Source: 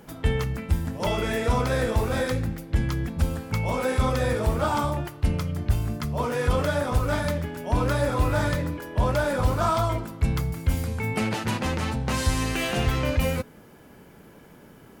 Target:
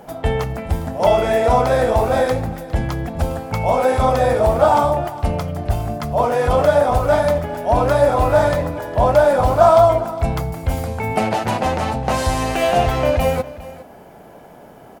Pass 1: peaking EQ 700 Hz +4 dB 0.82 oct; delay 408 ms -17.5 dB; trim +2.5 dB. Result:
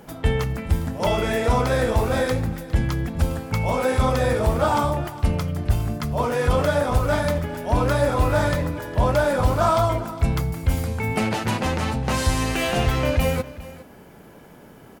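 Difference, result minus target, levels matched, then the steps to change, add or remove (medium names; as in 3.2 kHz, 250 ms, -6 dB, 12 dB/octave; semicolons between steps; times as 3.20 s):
500 Hz band -3.0 dB
change: peaking EQ 700 Hz +16 dB 0.82 oct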